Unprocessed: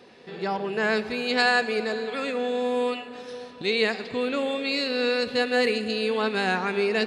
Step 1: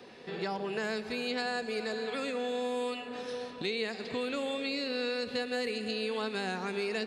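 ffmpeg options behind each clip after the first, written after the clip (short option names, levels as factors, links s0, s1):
-filter_complex "[0:a]acrossover=split=120|630|4300[s0][s1][s2][s3];[s0]acompressor=threshold=0.00126:ratio=4[s4];[s1]acompressor=threshold=0.0158:ratio=4[s5];[s2]acompressor=threshold=0.0112:ratio=4[s6];[s3]acompressor=threshold=0.00631:ratio=4[s7];[s4][s5][s6][s7]amix=inputs=4:normalize=0"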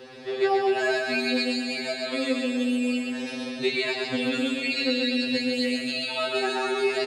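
-af "aecho=1:1:130|247|352.3|447.1|532.4:0.631|0.398|0.251|0.158|0.1,afftfilt=real='re*2.45*eq(mod(b,6),0)':imag='im*2.45*eq(mod(b,6),0)':win_size=2048:overlap=0.75,volume=2.82"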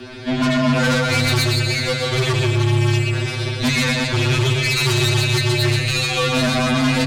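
-af "aeval=exprs='0.237*(cos(1*acos(clip(val(0)/0.237,-1,1)))-cos(1*PI/2))+0.0944*(cos(5*acos(clip(val(0)/0.237,-1,1)))-cos(5*PI/2))+0.075*(cos(8*acos(clip(val(0)/0.237,-1,1)))-cos(8*PI/2))':c=same,afreqshift=-140"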